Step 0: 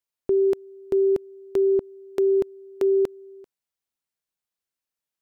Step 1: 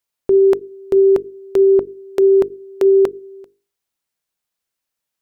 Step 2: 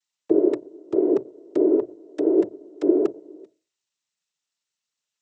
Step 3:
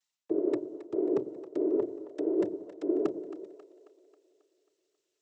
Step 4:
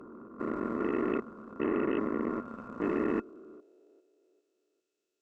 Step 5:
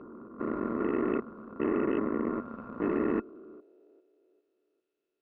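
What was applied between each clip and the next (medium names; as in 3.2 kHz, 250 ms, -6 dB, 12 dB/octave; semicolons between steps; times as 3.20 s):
hum notches 50/100/150/200/250/300/350/400/450 Hz; dynamic bell 1.1 kHz, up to +6 dB, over -39 dBFS, Q 0.76; trim +7.5 dB
noise-vocoded speech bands 12; trim -7.5 dB
reverse; compression 4:1, threshold -27 dBFS, peak gain reduction 13 dB; reverse; two-band feedback delay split 410 Hz, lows 92 ms, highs 270 ms, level -13.5 dB
spectrogram pixelated in time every 400 ms; Chebyshev shaper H 3 -25 dB, 7 -14 dB, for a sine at -23 dBFS; small resonant body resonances 230/1400/2600 Hz, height 13 dB, ringing for 55 ms
distance through air 300 m; trim +2 dB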